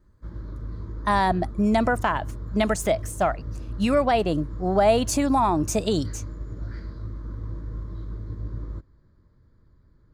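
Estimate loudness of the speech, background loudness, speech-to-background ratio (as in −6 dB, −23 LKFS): −23.5 LKFS, −36.0 LKFS, 12.5 dB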